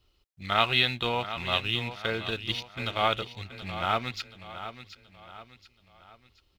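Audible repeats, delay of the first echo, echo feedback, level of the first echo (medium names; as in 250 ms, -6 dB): 4, 727 ms, 42%, -12.0 dB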